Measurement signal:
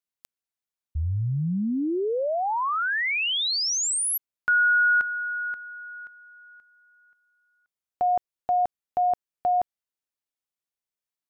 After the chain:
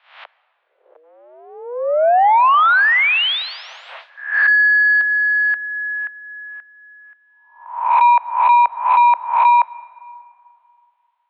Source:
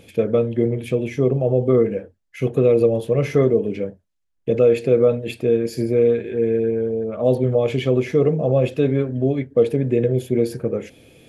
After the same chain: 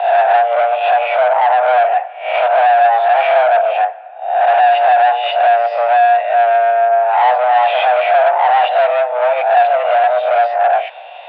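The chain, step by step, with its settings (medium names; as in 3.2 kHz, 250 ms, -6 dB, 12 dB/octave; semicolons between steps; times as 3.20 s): reverse spectral sustain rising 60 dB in 0.59 s; transient shaper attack +7 dB, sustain -3 dB; overdrive pedal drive 30 dB, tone 1.4 kHz, clips at -0.5 dBFS; plate-style reverb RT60 2.6 s, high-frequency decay 0.6×, DRR 18.5 dB; mistuned SSB +240 Hz 350–3300 Hz; trim -2.5 dB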